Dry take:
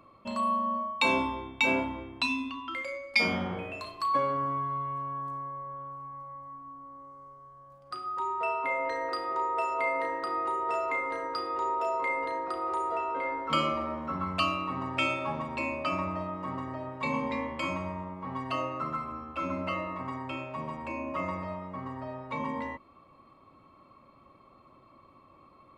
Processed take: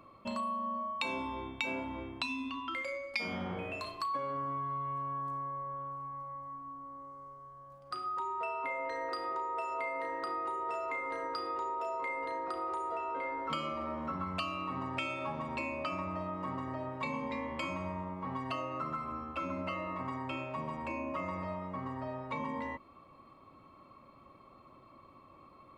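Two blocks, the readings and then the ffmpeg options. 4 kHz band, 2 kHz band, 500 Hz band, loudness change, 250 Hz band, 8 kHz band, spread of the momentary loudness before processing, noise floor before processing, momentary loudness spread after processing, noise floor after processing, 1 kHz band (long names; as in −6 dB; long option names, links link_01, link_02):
−7.5 dB, −7.5 dB, −5.5 dB, −6.0 dB, −5.0 dB, can't be measured, 12 LU, −58 dBFS, 6 LU, −58 dBFS, −5.0 dB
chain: -af "acompressor=threshold=-34dB:ratio=5"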